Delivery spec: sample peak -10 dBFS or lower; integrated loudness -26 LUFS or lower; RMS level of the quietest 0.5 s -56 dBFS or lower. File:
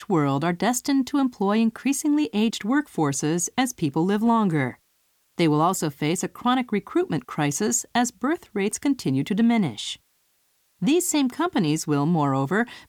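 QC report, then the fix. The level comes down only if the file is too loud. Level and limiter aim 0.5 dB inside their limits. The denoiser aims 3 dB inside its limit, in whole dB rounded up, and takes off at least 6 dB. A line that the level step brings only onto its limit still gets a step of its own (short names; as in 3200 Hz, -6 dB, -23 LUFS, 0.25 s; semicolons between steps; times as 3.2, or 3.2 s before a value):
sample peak -9.5 dBFS: fail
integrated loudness -23.5 LUFS: fail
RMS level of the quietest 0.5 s -67 dBFS: OK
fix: gain -3 dB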